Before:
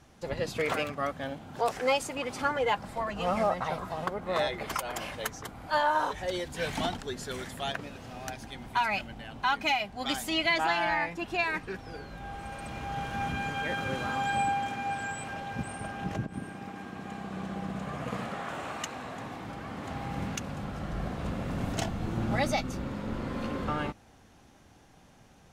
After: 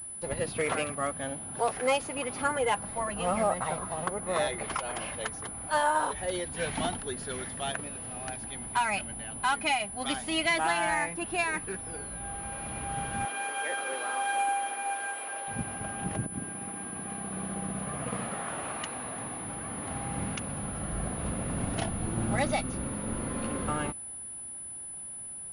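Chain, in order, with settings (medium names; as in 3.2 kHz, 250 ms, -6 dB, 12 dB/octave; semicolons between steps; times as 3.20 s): 13.25–15.48 s: high-pass 380 Hz 24 dB/octave; class-D stage that switches slowly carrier 10 kHz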